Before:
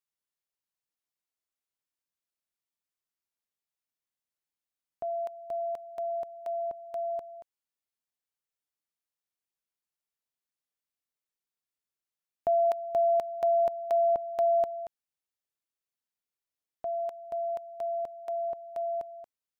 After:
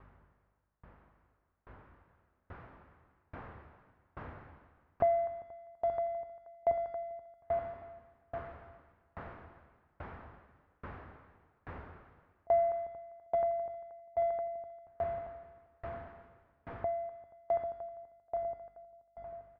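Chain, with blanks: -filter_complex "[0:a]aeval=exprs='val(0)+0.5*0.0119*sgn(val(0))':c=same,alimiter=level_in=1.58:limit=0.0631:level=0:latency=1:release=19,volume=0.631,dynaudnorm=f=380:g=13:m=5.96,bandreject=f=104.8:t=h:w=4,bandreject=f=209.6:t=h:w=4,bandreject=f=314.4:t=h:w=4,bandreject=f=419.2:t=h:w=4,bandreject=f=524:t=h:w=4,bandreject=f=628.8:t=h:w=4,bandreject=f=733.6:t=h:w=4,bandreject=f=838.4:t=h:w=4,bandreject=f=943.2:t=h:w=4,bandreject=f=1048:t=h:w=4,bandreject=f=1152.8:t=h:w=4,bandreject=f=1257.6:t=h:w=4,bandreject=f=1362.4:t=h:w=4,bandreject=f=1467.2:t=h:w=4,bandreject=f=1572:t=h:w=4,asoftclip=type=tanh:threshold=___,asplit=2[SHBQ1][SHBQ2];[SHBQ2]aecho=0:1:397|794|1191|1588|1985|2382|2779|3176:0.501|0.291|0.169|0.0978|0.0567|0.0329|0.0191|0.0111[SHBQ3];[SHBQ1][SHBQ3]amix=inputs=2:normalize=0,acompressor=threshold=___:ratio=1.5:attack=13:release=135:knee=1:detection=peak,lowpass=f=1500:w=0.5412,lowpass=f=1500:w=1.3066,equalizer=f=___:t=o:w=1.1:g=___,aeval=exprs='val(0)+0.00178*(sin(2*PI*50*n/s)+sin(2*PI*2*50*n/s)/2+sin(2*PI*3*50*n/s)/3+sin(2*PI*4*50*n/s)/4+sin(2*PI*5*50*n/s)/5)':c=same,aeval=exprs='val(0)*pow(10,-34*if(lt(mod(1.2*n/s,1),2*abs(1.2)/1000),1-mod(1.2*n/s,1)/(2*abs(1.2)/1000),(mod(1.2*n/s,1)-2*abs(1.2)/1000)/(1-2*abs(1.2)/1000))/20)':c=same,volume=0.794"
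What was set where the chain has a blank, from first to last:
0.224, 0.0398, 80, 14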